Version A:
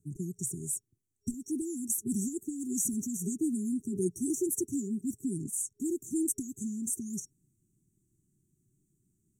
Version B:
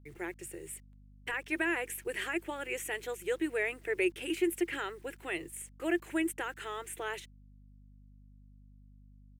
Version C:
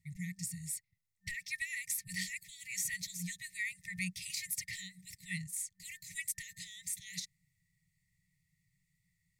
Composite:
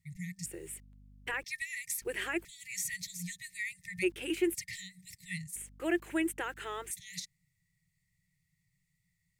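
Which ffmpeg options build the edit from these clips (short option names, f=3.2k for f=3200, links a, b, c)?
-filter_complex "[1:a]asplit=4[a][b][c][d];[2:a]asplit=5[e][f][g][h][i];[e]atrim=end=0.462[j];[a]atrim=start=0.458:end=1.442[k];[f]atrim=start=1.438:end=2.022[l];[b]atrim=start=2.018:end=2.452[m];[g]atrim=start=2.448:end=4.04[n];[c]atrim=start=4.02:end=4.56[o];[h]atrim=start=4.54:end=5.562[p];[d]atrim=start=5.558:end=6.912[q];[i]atrim=start=6.908[r];[j][k]acrossfade=d=0.004:c1=hsin:c2=hsin[s];[s][l]acrossfade=d=0.004:c1=hsin:c2=hsin[t];[t][m]acrossfade=d=0.004:c1=hsin:c2=hsin[u];[u][n]acrossfade=d=0.004:c1=hsin:c2=hsin[v];[v][o]acrossfade=d=0.02:c1=tri:c2=tri[w];[w][p]acrossfade=d=0.02:c1=tri:c2=tri[x];[x][q]acrossfade=d=0.004:c1=hsin:c2=hsin[y];[y][r]acrossfade=d=0.004:c1=hsin:c2=hsin"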